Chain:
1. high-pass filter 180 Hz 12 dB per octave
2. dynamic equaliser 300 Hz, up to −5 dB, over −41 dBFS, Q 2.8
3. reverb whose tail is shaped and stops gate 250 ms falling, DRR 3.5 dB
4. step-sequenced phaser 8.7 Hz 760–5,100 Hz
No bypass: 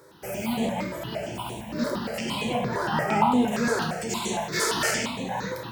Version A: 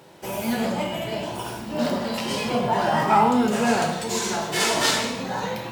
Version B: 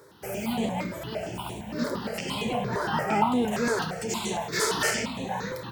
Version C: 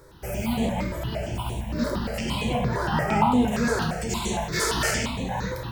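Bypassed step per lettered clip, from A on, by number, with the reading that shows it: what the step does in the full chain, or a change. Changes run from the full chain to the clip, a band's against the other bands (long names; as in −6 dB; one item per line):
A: 4, 4 kHz band +2.5 dB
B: 3, change in integrated loudness −1.5 LU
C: 1, 125 Hz band +6.5 dB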